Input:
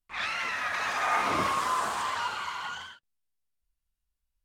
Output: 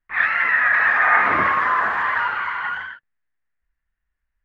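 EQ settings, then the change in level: synth low-pass 1800 Hz, resonance Q 5.4; +4.5 dB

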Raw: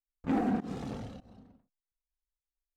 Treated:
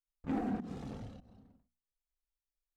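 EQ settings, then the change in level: low shelf 140 Hz +7 dB; notches 60/120/180/240 Hz; -7.0 dB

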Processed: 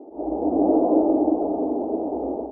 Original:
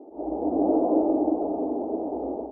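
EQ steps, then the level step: air absorption 250 m; +4.0 dB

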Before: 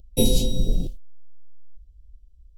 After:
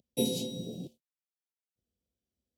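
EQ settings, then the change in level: HPF 150 Hz 24 dB/oct; high shelf 5700 Hz -3.5 dB; -7.5 dB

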